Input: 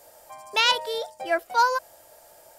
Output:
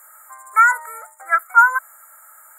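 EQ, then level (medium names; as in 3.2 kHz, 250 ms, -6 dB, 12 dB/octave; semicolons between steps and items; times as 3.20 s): resonant high-pass 1.3 kHz, resonance Q 13; brick-wall FIR band-stop 2.3–6.8 kHz; treble shelf 2.6 kHz +11 dB; -2.0 dB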